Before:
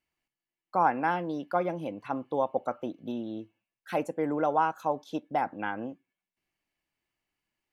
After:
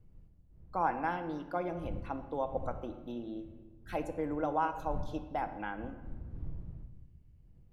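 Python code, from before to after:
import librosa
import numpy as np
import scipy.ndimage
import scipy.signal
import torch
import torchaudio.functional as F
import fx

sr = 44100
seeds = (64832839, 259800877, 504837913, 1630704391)

y = fx.dmg_wind(x, sr, seeds[0], corner_hz=82.0, level_db=-40.0)
y = fx.room_shoebox(y, sr, seeds[1], volume_m3=1200.0, walls='mixed', distance_m=0.64)
y = y * librosa.db_to_amplitude(-7.0)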